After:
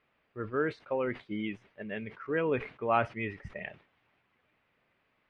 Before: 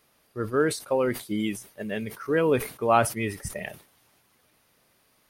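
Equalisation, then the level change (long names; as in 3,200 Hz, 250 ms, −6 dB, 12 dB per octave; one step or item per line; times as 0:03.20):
transistor ladder low-pass 3,000 Hz, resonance 35%
0.0 dB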